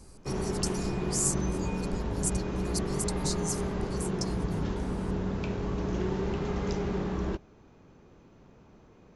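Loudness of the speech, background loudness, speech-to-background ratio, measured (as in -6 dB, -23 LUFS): -35.5 LUFS, -32.5 LUFS, -3.0 dB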